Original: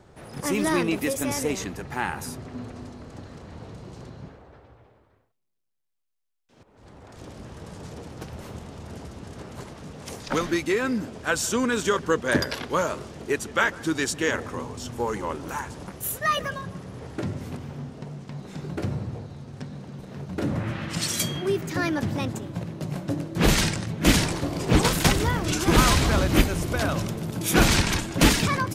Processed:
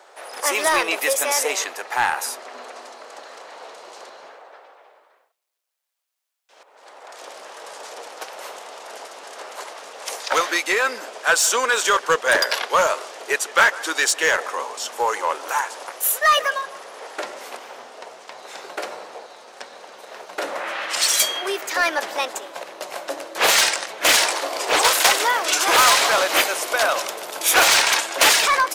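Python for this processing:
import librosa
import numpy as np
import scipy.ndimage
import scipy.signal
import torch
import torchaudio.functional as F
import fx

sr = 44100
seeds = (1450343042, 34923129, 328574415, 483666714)

p1 = scipy.signal.sosfilt(scipy.signal.butter(4, 560.0, 'highpass', fs=sr, output='sos'), x)
p2 = 10.0 ** (-23.5 / 20.0) * (np.abs((p1 / 10.0 ** (-23.5 / 20.0) + 3.0) % 4.0 - 2.0) - 1.0)
p3 = p1 + (p2 * librosa.db_to_amplitude(-7.0))
y = p3 * librosa.db_to_amplitude(7.0)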